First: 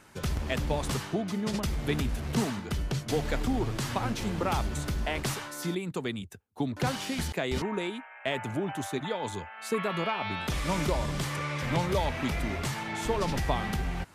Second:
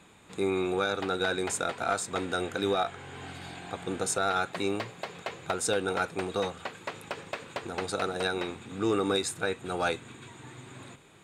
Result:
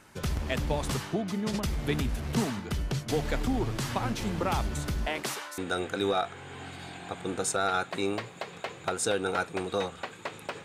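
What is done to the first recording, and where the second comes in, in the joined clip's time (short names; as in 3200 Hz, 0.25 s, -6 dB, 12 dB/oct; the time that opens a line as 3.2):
first
5.07–5.58 HPF 150 Hz -> 730 Hz
5.58 switch to second from 2.2 s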